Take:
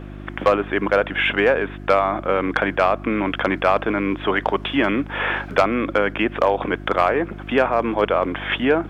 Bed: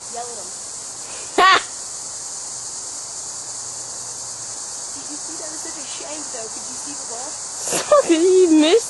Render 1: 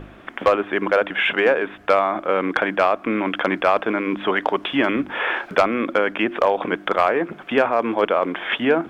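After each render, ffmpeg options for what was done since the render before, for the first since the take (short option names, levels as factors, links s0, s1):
-af "bandreject=f=50:t=h:w=4,bandreject=f=100:t=h:w=4,bandreject=f=150:t=h:w=4,bandreject=f=200:t=h:w=4,bandreject=f=250:t=h:w=4,bandreject=f=300:t=h:w=4,bandreject=f=350:t=h:w=4"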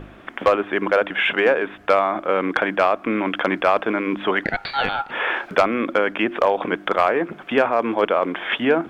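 -filter_complex "[0:a]asettb=1/sr,asplit=3[s0][s1][s2];[s0]atrim=end=4.444[s3];[s1]atrim=start=4.44:end=5.11,asetpts=PTS-STARTPTS,afade=t=in:d=0.004:c=qsin,afade=t=out:st=0.666:d=0.004:c=qsin,aeval=exprs='val(0)*sin(2*PI*1100*n/s)':c=same[s4];[s2]atrim=start=5.106[s5];[s3][s4]acrossfade=d=0.004:c1=hsin:c2=qsin[s6];[s6][s5]acrossfade=d=0.004:c1=qsin:c2=hsin"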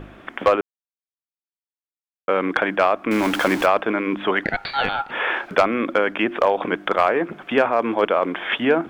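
-filter_complex "[0:a]asettb=1/sr,asplit=3[s0][s1][s2];[s0]atrim=end=3.114[s3];[s1]atrim=start=3.11:end=3.66,asetpts=PTS-STARTPTS,afade=t=in:d=0.004:c=qsin,afade=t=out:st=0.546:d=0.004:c=qsin,aeval=exprs='val(0)+0.5*0.0668*sgn(val(0))':c=same[s4];[s2]atrim=start=3.656[s5];[s3][s4]acrossfade=d=0.004:c1=hsin:c2=qsin[s6];[s6][s5]acrossfade=d=0.004:c1=qsin:c2=hsin,asplit=3[s7][s8][s9];[s7]atrim=end=0.61,asetpts=PTS-STARTPTS,afade=t=out:st=0.606:d=0.004:c=hsin[s10];[s8]atrim=start=0.61:end=2.28,asetpts=PTS-STARTPTS,volume=0[s11];[s9]atrim=start=2.28,asetpts=PTS-STARTPTS,afade=t=in:d=0.004:c=hsin[s12];[s10][s11][s12]concat=n=3:v=0:a=1"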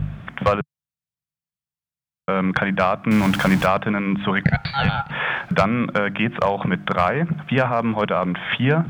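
-af "highpass=44,lowshelf=f=220:t=q:w=3:g=13.5"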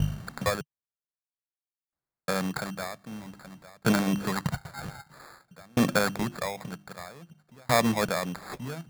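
-af "acrusher=samples=15:mix=1:aa=0.000001,aeval=exprs='val(0)*pow(10,-36*if(lt(mod(0.52*n/s,1),2*abs(0.52)/1000),1-mod(0.52*n/s,1)/(2*abs(0.52)/1000),(mod(0.52*n/s,1)-2*abs(0.52)/1000)/(1-2*abs(0.52)/1000))/20)':c=same"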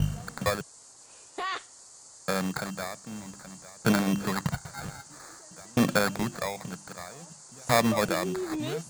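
-filter_complex "[1:a]volume=0.0944[s0];[0:a][s0]amix=inputs=2:normalize=0"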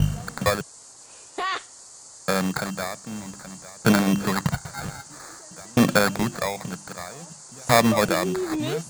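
-af "volume=1.88"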